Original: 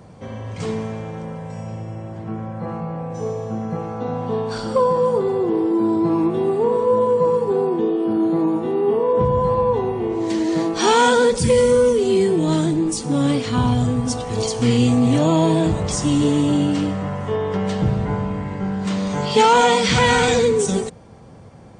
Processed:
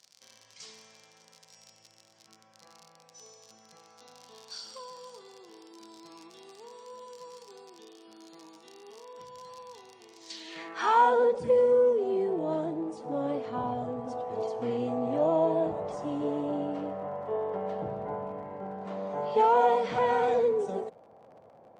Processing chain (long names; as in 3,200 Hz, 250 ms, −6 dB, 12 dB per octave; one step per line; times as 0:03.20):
surface crackle 51 per second −26 dBFS
band-pass filter sweep 5,300 Hz → 650 Hz, 0:10.26–0:11.15
level −2.5 dB